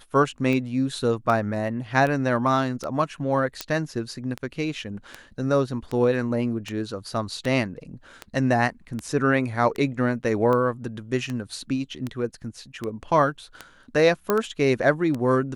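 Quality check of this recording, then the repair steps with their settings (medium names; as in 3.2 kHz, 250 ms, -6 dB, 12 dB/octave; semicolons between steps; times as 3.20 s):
tick 78 rpm -16 dBFS
3.61 s: pop -11 dBFS
14.30 s: pop -8 dBFS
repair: de-click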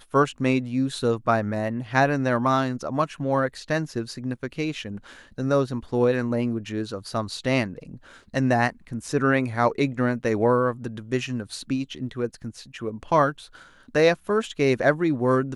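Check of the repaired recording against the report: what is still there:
3.61 s: pop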